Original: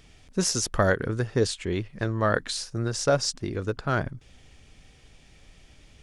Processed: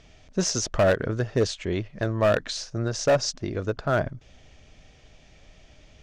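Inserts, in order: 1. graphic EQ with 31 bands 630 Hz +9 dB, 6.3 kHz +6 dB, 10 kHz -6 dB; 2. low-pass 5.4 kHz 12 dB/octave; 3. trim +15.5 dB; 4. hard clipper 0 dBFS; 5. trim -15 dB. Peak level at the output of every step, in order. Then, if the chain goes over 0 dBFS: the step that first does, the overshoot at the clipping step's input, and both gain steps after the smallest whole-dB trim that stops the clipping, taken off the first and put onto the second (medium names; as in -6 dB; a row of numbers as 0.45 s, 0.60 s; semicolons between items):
-5.5 dBFS, -5.5 dBFS, +10.0 dBFS, 0.0 dBFS, -15.0 dBFS; step 3, 10.0 dB; step 3 +5.5 dB, step 5 -5 dB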